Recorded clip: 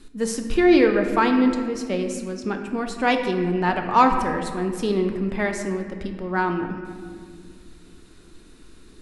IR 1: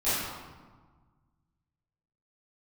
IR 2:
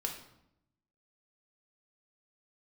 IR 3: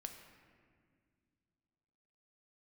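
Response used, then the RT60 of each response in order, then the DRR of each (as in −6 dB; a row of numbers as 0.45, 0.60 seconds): 3; 1.4, 0.80, 2.0 seconds; −16.0, 1.0, 4.5 decibels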